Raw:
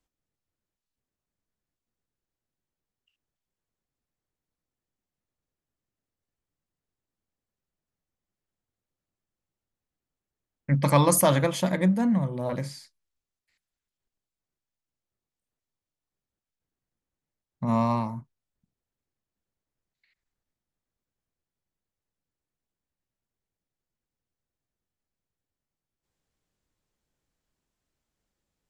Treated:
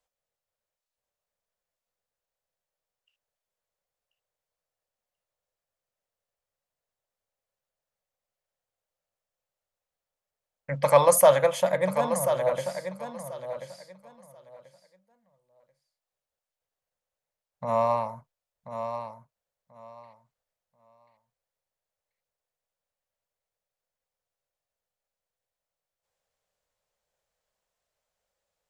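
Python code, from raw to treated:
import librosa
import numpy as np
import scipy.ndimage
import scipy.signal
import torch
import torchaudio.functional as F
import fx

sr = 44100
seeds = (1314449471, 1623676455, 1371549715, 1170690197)

p1 = fx.low_shelf_res(x, sr, hz=410.0, db=-9.5, q=3.0)
p2 = p1 + fx.echo_feedback(p1, sr, ms=1036, feedback_pct=19, wet_db=-9.0, dry=0)
y = fx.dynamic_eq(p2, sr, hz=4500.0, q=1.6, threshold_db=-49.0, ratio=4.0, max_db=-5)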